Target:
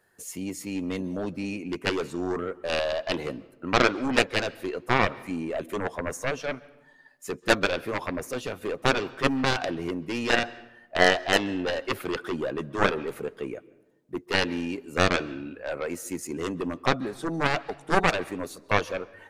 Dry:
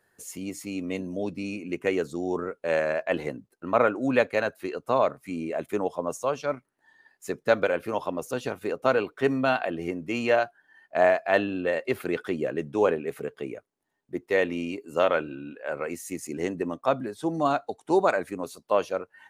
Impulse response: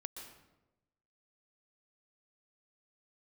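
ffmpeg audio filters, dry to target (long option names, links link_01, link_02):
-filter_complex "[0:a]aeval=exprs='0.473*(cos(1*acos(clip(val(0)/0.473,-1,1)))-cos(1*PI/2))+0.0237*(cos(6*acos(clip(val(0)/0.473,-1,1)))-cos(6*PI/2))+0.15*(cos(7*acos(clip(val(0)/0.473,-1,1)))-cos(7*PI/2))':channel_layout=same,asplit=2[link_01][link_02];[link_02]lowpass=6400[link_03];[1:a]atrim=start_sample=2205,adelay=11[link_04];[link_03][link_04]afir=irnorm=-1:irlink=0,volume=-12.5dB[link_05];[link_01][link_05]amix=inputs=2:normalize=0"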